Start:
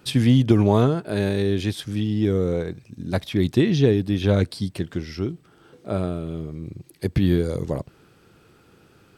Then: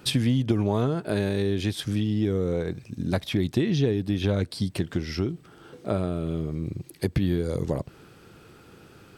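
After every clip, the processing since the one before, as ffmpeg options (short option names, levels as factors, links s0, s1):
-af "acompressor=threshold=0.0447:ratio=3,volume=1.58"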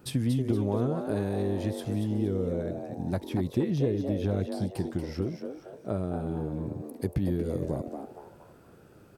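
-filter_complex "[0:a]equalizer=f=3300:w=0.53:g=-10,asplit=2[s0][s1];[s1]asplit=4[s2][s3][s4][s5];[s2]adelay=234,afreqshift=140,volume=0.422[s6];[s3]adelay=468,afreqshift=280,volume=0.148[s7];[s4]adelay=702,afreqshift=420,volume=0.0519[s8];[s5]adelay=936,afreqshift=560,volume=0.018[s9];[s6][s7][s8][s9]amix=inputs=4:normalize=0[s10];[s0][s10]amix=inputs=2:normalize=0,volume=0.631"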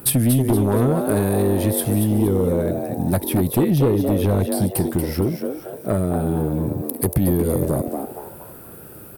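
-af "aexciter=amount=10.8:drive=3.9:freq=9200,aeval=exprs='0.266*sin(PI/2*2.51*val(0)/0.266)':c=same"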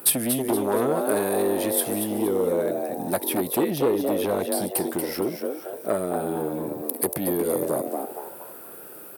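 -af "highpass=370"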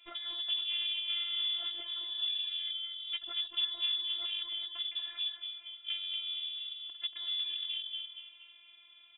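-af "lowpass=f=3200:t=q:w=0.5098,lowpass=f=3200:t=q:w=0.6013,lowpass=f=3200:t=q:w=0.9,lowpass=f=3200:t=q:w=2.563,afreqshift=-3800,afftfilt=real='hypot(re,im)*cos(PI*b)':imag='0':win_size=512:overlap=0.75,volume=0.376"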